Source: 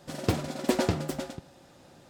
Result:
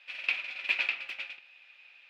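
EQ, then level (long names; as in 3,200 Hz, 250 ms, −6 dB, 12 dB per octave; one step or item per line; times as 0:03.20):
high-pass with resonance 2,500 Hz, resonance Q 11
high-frequency loss of the air 360 metres
+3.5 dB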